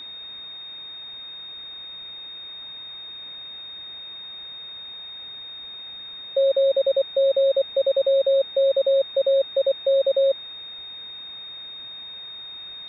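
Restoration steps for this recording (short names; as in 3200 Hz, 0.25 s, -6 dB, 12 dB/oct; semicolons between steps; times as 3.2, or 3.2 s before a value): notch 3700 Hz, Q 30; denoiser 30 dB, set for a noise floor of -38 dBFS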